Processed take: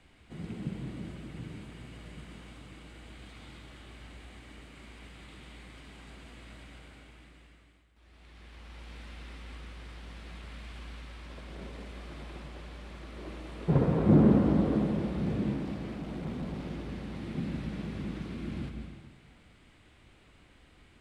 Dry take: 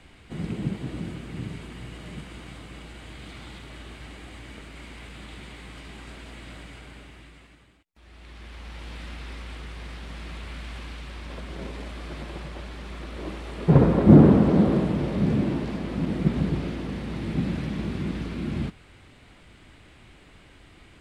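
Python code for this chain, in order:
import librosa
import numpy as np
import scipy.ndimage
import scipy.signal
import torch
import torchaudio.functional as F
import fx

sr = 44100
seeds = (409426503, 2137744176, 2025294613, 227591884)

y = fx.clip_hard(x, sr, threshold_db=-26.5, at=(15.56, 16.92))
y = fx.rev_plate(y, sr, seeds[0], rt60_s=1.5, hf_ratio=0.95, predelay_ms=115, drr_db=4.5)
y = y * librosa.db_to_amplitude(-9.0)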